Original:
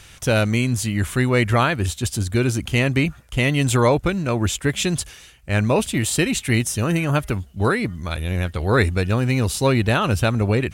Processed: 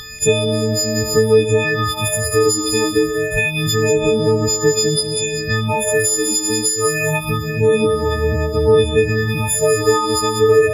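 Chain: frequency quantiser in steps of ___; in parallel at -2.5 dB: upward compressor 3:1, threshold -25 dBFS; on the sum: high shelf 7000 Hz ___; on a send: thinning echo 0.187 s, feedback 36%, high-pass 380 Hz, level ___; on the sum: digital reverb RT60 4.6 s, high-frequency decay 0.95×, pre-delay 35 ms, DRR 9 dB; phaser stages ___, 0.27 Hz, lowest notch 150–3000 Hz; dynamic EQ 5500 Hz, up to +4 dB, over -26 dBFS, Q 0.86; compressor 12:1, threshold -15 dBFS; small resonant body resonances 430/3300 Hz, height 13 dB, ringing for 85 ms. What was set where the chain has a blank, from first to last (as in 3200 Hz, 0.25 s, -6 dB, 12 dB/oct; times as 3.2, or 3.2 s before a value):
6 st, -8 dB, -8.5 dB, 6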